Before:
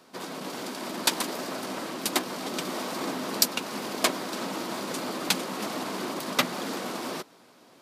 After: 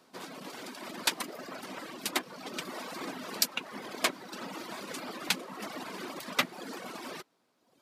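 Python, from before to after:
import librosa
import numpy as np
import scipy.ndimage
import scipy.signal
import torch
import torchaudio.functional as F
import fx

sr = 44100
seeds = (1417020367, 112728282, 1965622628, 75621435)

y = fx.dynamic_eq(x, sr, hz=2100.0, q=0.95, threshold_db=-44.0, ratio=4.0, max_db=5)
y = fx.dereverb_blind(y, sr, rt60_s=1.3)
y = y * 10.0 ** (-6.0 / 20.0)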